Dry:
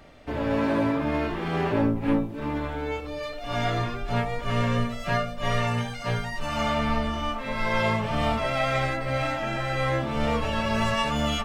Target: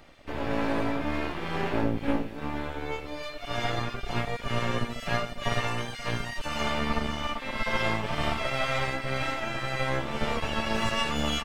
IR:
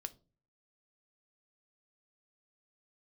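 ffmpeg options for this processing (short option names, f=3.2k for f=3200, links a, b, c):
-filter_complex "[0:a]acrossover=split=1700[a][b];[a]aeval=exprs='max(val(0),0)':c=same[c];[b]aecho=1:1:511:0.335[d];[c][d]amix=inputs=2:normalize=0"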